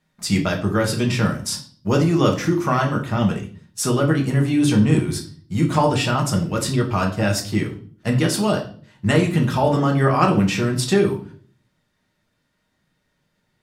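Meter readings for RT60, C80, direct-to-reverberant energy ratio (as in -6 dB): 0.45 s, 14.5 dB, 0.5 dB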